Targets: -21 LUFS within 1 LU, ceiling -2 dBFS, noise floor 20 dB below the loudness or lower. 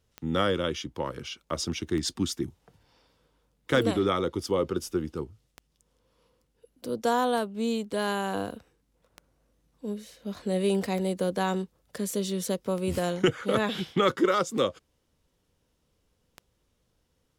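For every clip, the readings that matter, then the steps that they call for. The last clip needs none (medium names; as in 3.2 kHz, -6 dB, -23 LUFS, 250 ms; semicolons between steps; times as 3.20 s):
clicks found 10; loudness -29.0 LUFS; peak level -11.5 dBFS; loudness target -21.0 LUFS
-> de-click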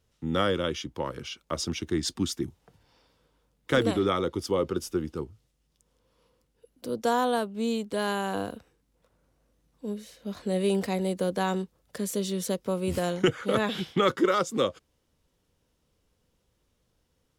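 clicks found 0; loudness -29.0 LUFS; peak level -11.5 dBFS; loudness target -21.0 LUFS
-> trim +8 dB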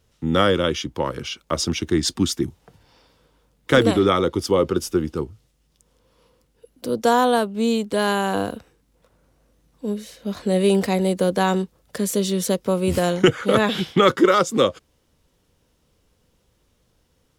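loudness -21.0 LUFS; peak level -3.5 dBFS; noise floor -66 dBFS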